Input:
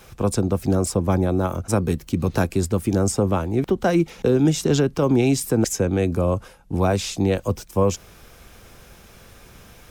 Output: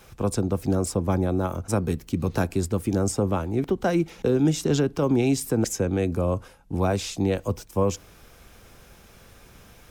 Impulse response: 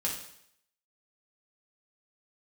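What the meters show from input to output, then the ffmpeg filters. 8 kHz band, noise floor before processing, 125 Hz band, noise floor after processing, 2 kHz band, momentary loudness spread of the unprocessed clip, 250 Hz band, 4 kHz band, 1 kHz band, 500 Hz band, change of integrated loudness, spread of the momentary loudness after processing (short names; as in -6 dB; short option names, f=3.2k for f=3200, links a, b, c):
-4.0 dB, -48 dBFS, -3.5 dB, -52 dBFS, -4.0 dB, 5 LU, -3.5 dB, -4.0 dB, -3.5 dB, -3.5 dB, -3.5 dB, 5 LU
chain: -filter_complex "[0:a]asplit=2[a][b];[1:a]atrim=start_sample=2205,asetrate=70560,aresample=44100,lowpass=2.4k[c];[b][c]afir=irnorm=-1:irlink=0,volume=-20.5dB[d];[a][d]amix=inputs=2:normalize=0,volume=-4dB"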